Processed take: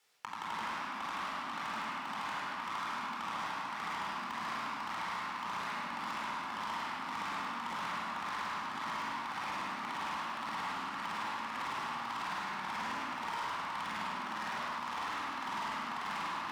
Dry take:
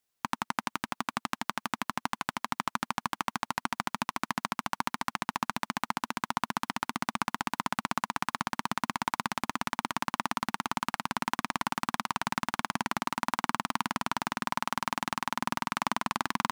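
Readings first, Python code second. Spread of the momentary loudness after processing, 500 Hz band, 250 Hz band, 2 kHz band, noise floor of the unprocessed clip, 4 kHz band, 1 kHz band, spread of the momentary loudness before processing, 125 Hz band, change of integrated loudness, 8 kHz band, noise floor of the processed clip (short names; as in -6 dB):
1 LU, -5.5 dB, -10.5 dB, -4.0 dB, -82 dBFS, -5.0 dB, -4.5 dB, 2 LU, -11.0 dB, -5.0 dB, -11.5 dB, -41 dBFS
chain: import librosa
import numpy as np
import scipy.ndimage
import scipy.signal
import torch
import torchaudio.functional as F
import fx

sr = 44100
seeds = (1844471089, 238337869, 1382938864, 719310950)

y = x * (1.0 - 0.81 / 2.0 + 0.81 / 2.0 * np.cos(2.0 * np.pi * 1.8 * (np.arange(len(x)) / sr)))
y = fx.weighting(y, sr, curve='A')
y = fx.room_shoebox(y, sr, seeds[0], volume_m3=1800.0, walls='mixed', distance_m=4.2)
y = fx.leveller(y, sr, passes=1)
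y = 10.0 ** (-27.0 / 20.0) * np.tanh(y / 10.0 ** (-27.0 / 20.0))
y = scipy.signal.sosfilt(scipy.signal.butter(2, 51.0, 'highpass', fs=sr, output='sos'), y)
y = fx.high_shelf(y, sr, hz=6100.0, db=-7.5)
y = y + 10.0 ** (-5.0 / 20.0) * np.pad(y, (int(103 * sr / 1000.0), 0))[:len(y)]
y = fx.band_squash(y, sr, depth_pct=70)
y = y * 10.0 ** (-8.0 / 20.0)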